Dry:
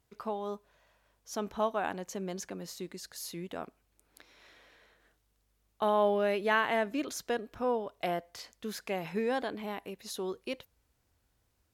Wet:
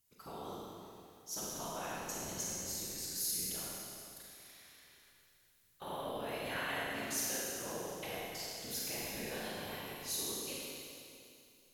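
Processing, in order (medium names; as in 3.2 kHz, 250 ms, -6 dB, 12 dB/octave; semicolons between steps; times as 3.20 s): whisper effect; bass shelf 270 Hz +6.5 dB; peak limiter -23 dBFS, peak gain reduction 9 dB; pre-emphasis filter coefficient 0.9; Schroeder reverb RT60 2.6 s, combs from 32 ms, DRR -5.5 dB; trim +2 dB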